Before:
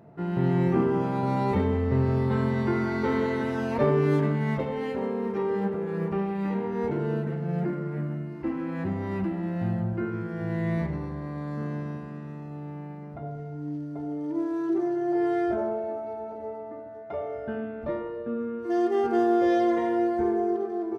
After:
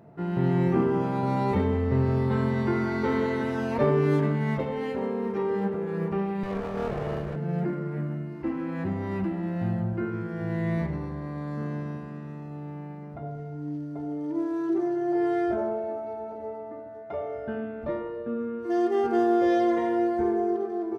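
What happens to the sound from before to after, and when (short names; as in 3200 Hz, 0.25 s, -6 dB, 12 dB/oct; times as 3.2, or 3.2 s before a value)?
6.43–7.36 minimum comb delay 1.7 ms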